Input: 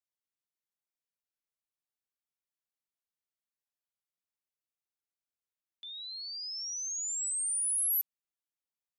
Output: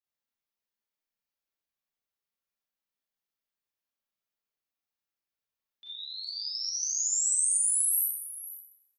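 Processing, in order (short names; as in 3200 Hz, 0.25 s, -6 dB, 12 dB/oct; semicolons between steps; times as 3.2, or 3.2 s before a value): bell 8600 Hz -9.5 dB 0.63 oct, from 6.24 s +7.5 dB; compressor, threshold -28 dBFS, peak gain reduction 4.5 dB; echo 0.495 s -15 dB; Schroeder reverb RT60 0.69 s, combs from 28 ms, DRR -7 dB; gain -4.5 dB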